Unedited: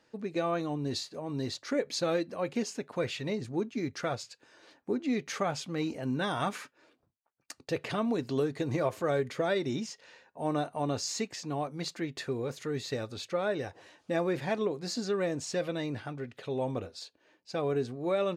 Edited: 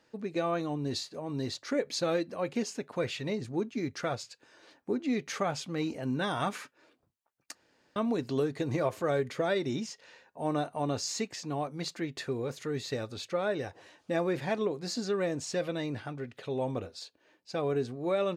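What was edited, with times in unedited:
0:07.55–0:07.96: fill with room tone

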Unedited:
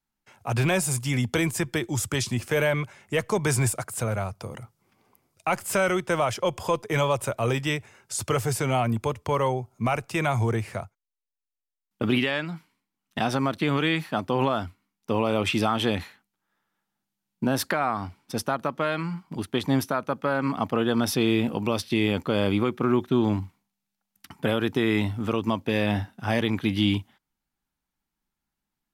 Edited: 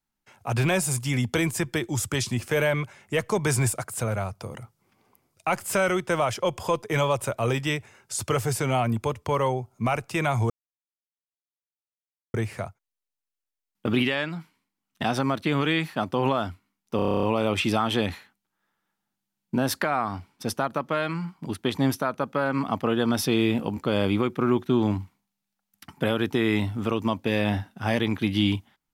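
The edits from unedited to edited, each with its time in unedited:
0:10.50: splice in silence 1.84 s
0:15.12: stutter 0.03 s, 10 plays
0:21.66–0:22.19: remove

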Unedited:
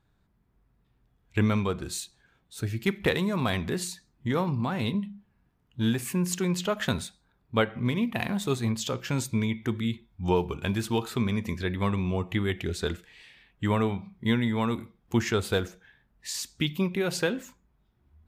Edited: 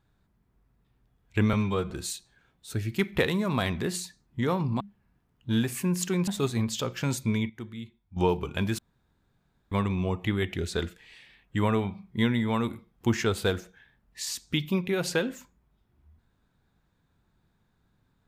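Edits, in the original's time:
0:01.53–0:01.78: time-stretch 1.5×
0:04.68–0:05.11: remove
0:06.58–0:08.35: remove
0:09.57–0:10.24: clip gain −10.5 dB
0:10.86–0:11.79: fill with room tone

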